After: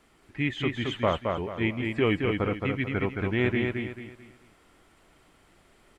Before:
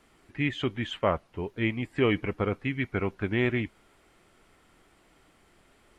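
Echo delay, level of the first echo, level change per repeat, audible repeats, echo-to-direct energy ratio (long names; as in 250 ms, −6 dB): 220 ms, −4.0 dB, −9.5 dB, 4, −3.5 dB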